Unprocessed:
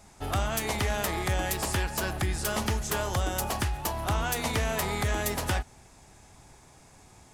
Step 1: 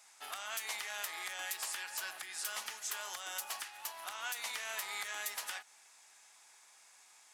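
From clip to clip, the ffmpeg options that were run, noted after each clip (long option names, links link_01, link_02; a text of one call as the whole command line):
ffmpeg -i in.wav -af "highpass=1400,alimiter=level_in=1dB:limit=-24dB:level=0:latency=1:release=225,volume=-1dB,volume=-2dB" out.wav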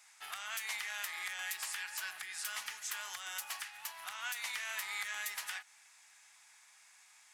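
ffmpeg -i in.wav -af "equalizer=frequency=125:width_type=o:width=1:gain=5,equalizer=frequency=250:width_type=o:width=1:gain=-6,equalizer=frequency=500:width_type=o:width=1:gain=-9,equalizer=frequency=2000:width_type=o:width=1:gain=5,volume=-1.5dB" out.wav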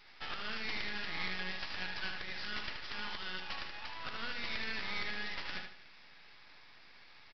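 ffmpeg -i in.wav -af "alimiter=level_in=8.5dB:limit=-24dB:level=0:latency=1:release=216,volume=-8.5dB,aresample=11025,aeval=exprs='max(val(0),0)':channel_layout=same,aresample=44100,aecho=1:1:76|152|228|304:0.501|0.17|0.0579|0.0197,volume=9.5dB" out.wav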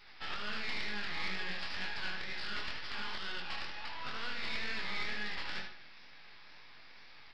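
ffmpeg -i in.wav -filter_complex "[0:a]flanger=delay=19:depth=7.5:speed=2.1,asplit=2[link_01][link_02];[link_02]asoftclip=type=tanh:threshold=-37dB,volume=-4.5dB[link_03];[link_01][link_03]amix=inputs=2:normalize=0,volume=1dB" out.wav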